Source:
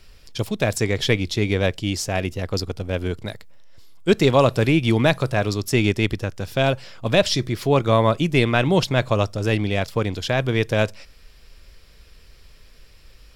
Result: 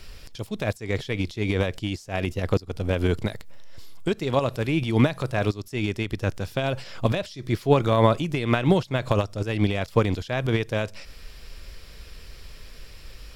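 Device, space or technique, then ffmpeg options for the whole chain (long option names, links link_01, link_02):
de-esser from a sidechain: -filter_complex "[0:a]asplit=2[link_01][link_02];[link_02]highpass=frequency=5100:width=0.5412,highpass=frequency=5100:width=1.3066,apad=whole_len=588812[link_03];[link_01][link_03]sidechaincompress=threshold=-50dB:ratio=8:attack=0.75:release=93,volume=6dB"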